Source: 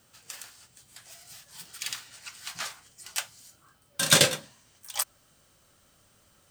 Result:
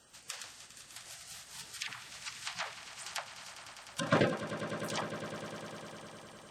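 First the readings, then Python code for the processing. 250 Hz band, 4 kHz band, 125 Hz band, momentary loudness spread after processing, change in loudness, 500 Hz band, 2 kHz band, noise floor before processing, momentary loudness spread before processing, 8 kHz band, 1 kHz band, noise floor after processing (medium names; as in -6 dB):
+1.5 dB, -13.0 dB, -2.5 dB, 16 LU, -12.0 dB, -1.5 dB, -6.5 dB, -64 dBFS, 26 LU, -15.0 dB, -0.5 dB, -56 dBFS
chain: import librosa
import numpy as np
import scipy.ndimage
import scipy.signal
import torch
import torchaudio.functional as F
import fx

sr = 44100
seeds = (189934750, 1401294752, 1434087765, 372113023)

y = fx.spec_quant(x, sr, step_db=30)
y = fx.env_lowpass_down(y, sr, base_hz=1100.0, full_db=-30.0)
y = fx.echo_swell(y, sr, ms=101, loudest=5, wet_db=-15)
y = y * 10.0 ** (1.0 / 20.0)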